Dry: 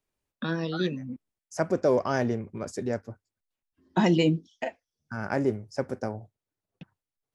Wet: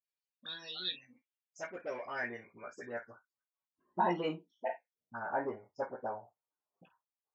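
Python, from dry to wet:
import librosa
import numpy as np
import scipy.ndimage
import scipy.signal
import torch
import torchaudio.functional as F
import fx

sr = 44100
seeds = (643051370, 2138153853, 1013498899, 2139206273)

p1 = fx.dynamic_eq(x, sr, hz=1200.0, q=2.5, threshold_db=-47.0, ratio=4.0, max_db=-5)
p2 = fx.spec_topn(p1, sr, count=64)
p3 = fx.dispersion(p2, sr, late='highs', ms=44.0, hz=840.0)
p4 = 10.0 ** (-25.0 / 20.0) * np.tanh(p3 / 10.0 ** (-25.0 / 20.0))
p5 = p3 + (p4 * librosa.db_to_amplitude(-10.5))
p6 = fx.filter_sweep_bandpass(p5, sr, from_hz=4500.0, to_hz=1000.0, start_s=0.35, end_s=3.88, q=2.5)
p7 = p6 + fx.room_early_taps(p6, sr, ms=(17, 51), db=(-5.5, -13.5), dry=0)
y = p7 * librosa.db_to_amplitude(1.0)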